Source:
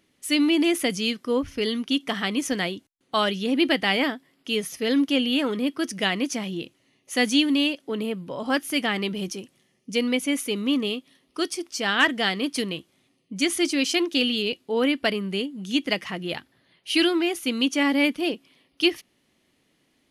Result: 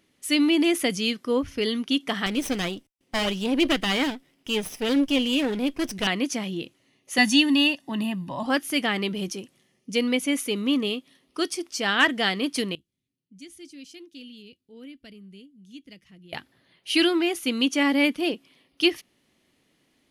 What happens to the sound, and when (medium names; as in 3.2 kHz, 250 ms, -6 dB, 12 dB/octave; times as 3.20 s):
2.26–6.07 s: comb filter that takes the minimum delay 0.37 ms
7.18–8.46 s: comb 1.1 ms, depth 95%
12.75–16.33 s: amplifier tone stack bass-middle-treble 10-0-1